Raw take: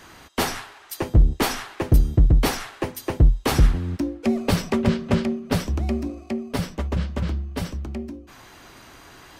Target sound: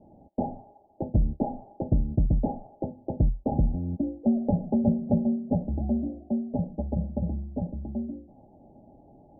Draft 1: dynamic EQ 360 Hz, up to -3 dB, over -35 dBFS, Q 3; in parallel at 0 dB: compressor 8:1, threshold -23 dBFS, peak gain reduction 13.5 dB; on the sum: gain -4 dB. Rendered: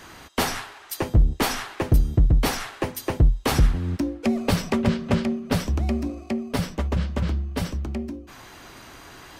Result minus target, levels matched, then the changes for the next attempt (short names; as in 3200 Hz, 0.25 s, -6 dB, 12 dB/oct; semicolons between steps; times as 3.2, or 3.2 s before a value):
1000 Hz band +3.0 dB
add after dynamic EQ: rippled Chebyshev low-pass 850 Hz, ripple 9 dB